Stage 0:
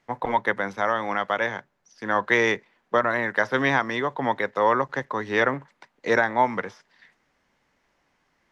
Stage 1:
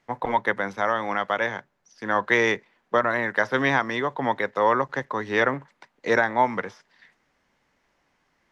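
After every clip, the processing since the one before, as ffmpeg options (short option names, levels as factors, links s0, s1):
-af anull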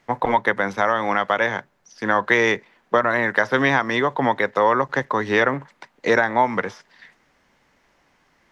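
-af "acompressor=threshold=0.0631:ratio=2,volume=2.37"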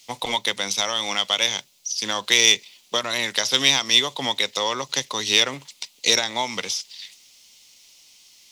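-af "aexciter=amount=14.5:drive=9:freq=2700,volume=0.355"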